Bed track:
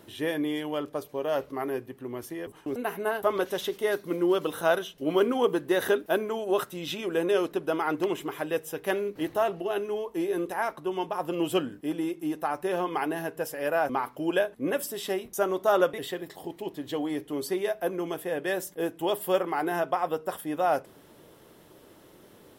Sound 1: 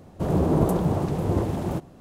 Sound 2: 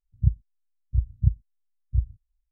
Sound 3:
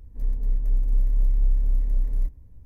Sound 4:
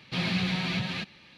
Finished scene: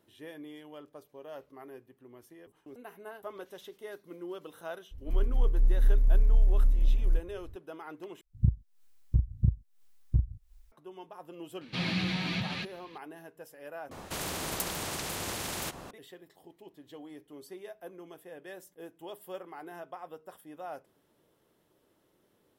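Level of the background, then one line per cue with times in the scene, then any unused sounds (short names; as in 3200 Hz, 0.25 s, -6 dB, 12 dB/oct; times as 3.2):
bed track -16.5 dB
4.91 add 3 -1.5 dB
8.21 replace with 2 -7 dB + recorder AGC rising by 79 dB/s, up to +26 dB
11.61 add 4 -3 dB
13.91 replace with 1 -8 dB + spectral compressor 4:1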